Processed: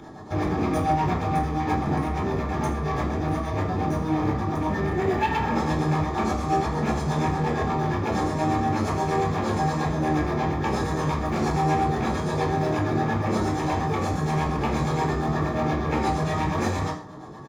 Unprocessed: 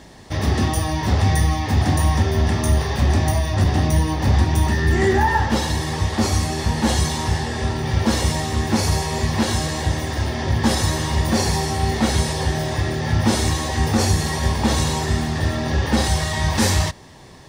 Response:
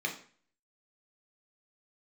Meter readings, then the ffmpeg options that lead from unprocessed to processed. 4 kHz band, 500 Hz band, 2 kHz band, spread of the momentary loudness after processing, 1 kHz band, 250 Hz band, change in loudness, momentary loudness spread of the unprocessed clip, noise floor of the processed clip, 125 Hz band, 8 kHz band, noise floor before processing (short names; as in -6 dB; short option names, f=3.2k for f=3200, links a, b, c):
-14.0 dB, -1.5 dB, -6.5 dB, 3 LU, 0.0 dB, -3.0 dB, -5.0 dB, 5 LU, -32 dBFS, -7.0 dB, -16.0 dB, -32 dBFS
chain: -filter_complex "[0:a]asplit=2[a][b];[b]acrusher=samples=40:mix=1:aa=0.000001,volume=-7.5dB[c];[a][c]amix=inputs=2:normalize=0,acompressor=threshold=-18dB:ratio=6,highshelf=f=1.7k:t=q:w=3:g=-9.5,flanger=delay=8.8:depth=6.5:regen=43:speed=0.23:shape=triangular,acrossover=split=410[d][e];[d]aeval=exprs='val(0)*(1-0.7/2+0.7/2*cos(2*PI*8.5*n/s))':c=same[f];[e]aeval=exprs='val(0)*(1-0.7/2-0.7/2*cos(2*PI*8.5*n/s))':c=same[g];[f][g]amix=inputs=2:normalize=0,asoftclip=type=hard:threshold=-27.5dB,acompressor=mode=upward:threshold=-50dB:ratio=2.5,aecho=1:1:23|79:0.316|0.188[h];[1:a]atrim=start_sample=2205,afade=t=out:st=0.18:d=0.01,atrim=end_sample=8379[i];[h][i]afir=irnorm=-1:irlink=0,volume=5dB"